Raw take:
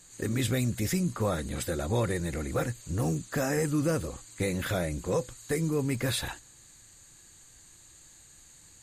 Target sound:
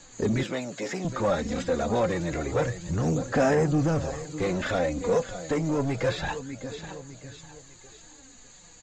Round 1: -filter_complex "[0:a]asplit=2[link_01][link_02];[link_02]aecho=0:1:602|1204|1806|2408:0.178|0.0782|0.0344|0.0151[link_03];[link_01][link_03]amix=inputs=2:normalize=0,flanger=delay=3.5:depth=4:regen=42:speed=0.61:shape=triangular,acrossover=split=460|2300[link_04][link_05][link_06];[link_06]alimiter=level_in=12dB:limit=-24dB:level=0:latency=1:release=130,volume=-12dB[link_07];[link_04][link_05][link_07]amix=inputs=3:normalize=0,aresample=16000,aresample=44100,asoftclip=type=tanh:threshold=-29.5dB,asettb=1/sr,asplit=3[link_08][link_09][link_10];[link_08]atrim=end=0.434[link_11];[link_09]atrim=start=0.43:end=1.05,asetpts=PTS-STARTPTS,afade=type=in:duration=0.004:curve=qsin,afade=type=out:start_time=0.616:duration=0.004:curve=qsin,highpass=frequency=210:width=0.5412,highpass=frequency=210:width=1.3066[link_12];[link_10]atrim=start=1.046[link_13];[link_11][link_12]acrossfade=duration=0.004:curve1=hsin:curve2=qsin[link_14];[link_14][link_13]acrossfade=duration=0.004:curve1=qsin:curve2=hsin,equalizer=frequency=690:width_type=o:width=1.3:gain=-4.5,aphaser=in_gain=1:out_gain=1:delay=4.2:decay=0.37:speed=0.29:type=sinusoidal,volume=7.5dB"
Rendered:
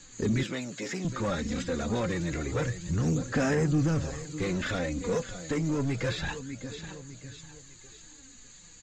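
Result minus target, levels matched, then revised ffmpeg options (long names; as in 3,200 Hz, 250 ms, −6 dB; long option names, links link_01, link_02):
500 Hz band −3.5 dB
-filter_complex "[0:a]asplit=2[link_01][link_02];[link_02]aecho=0:1:602|1204|1806|2408:0.178|0.0782|0.0344|0.0151[link_03];[link_01][link_03]amix=inputs=2:normalize=0,flanger=delay=3.5:depth=4:regen=42:speed=0.61:shape=triangular,acrossover=split=460|2300[link_04][link_05][link_06];[link_06]alimiter=level_in=12dB:limit=-24dB:level=0:latency=1:release=130,volume=-12dB[link_07];[link_04][link_05][link_07]amix=inputs=3:normalize=0,aresample=16000,aresample=44100,asoftclip=type=tanh:threshold=-29.5dB,asettb=1/sr,asplit=3[link_08][link_09][link_10];[link_08]atrim=end=0.434[link_11];[link_09]atrim=start=0.43:end=1.05,asetpts=PTS-STARTPTS,afade=type=in:duration=0.004:curve=qsin,afade=type=out:start_time=0.616:duration=0.004:curve=qsin,highpass=frequency=210:width=0.5412,highpass=frequency=210:width=1.3066[link_12];[link_10]atrim=start=1.046[link_13];[link_11][link_12]acrossfade=duration=0.004:curve1=hsin:curve2=qsin[link_14];[link_14][link_13]acrossfade=duration=0.004:curve1=qsin:curve2=hsin,equalizer=frequency=690:width_type=o:width=1.3:gain=5.5,aphaser=in_gain=1:out_gain=1:delay=4.2:decay=0.37:speed=0.29:type=sinusoidal,volume=7.5dB"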